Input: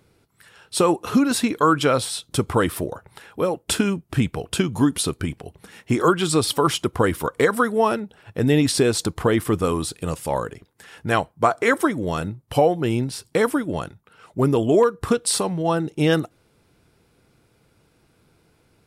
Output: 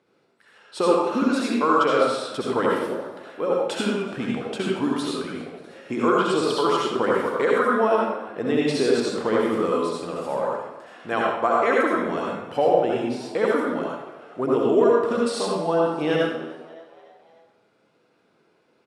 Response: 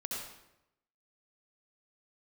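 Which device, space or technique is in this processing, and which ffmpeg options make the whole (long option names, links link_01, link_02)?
supermarket ceiling speaker: -filter_complex "[0:a]equalizer=frequency=4900:width=0.37:gain=-5,asplit=5[link_01][link_02][link_03][link_04][link_05];[link_02]adelay=291,afreqshift=84,volume=-21dB[link_06];[link_03]adelay=582,afreqshift=168,volume=-26.7dB[link_07];[link_04]adelay=873,afreqshift=252,volume=-32.4dB[link_08];[link_05]adelay=1164,afreqshift=336,volume=-38dB[link_09];[link_01][link_06][link_07][link_08][link_09]amix=inputs=5:normalize=0,highpass=300,lowpass=5300[link_10];[1:a]atrim=start_sample=2205[link_11];[link_10][link_11]afir=irnorm=-1:irlink=0"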